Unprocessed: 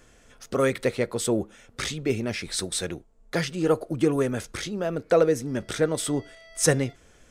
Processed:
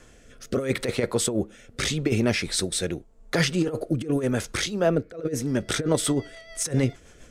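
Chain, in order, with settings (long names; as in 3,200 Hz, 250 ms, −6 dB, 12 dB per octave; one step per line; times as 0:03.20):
compressor whose output falls as the input rises −25 dBFS, ratio −0.5
rotating-speaker cabinet horn 0.8 Hz, later 7 Hz, at 0:05.13
0:04.66–0:05.14: multiband upward and downward expander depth 100%
level +4.5 dB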